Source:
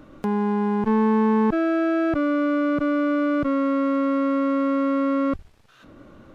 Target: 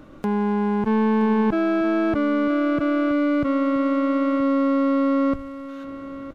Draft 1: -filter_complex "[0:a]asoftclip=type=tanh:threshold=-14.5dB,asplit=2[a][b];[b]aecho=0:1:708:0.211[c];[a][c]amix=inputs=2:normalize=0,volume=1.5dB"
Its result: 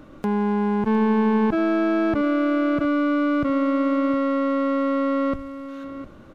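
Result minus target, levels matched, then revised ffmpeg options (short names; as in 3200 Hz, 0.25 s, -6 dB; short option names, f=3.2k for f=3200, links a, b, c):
echo 0.264 s early
-filter_complex "[0:a]asoftclip=type=tanh:threshold=-14.5dB,asplit=2[a][b];[b]aecho=0:1:972:0.211[c];[a][c]amix=inputs=2:normalize=0,volume=1.5dB"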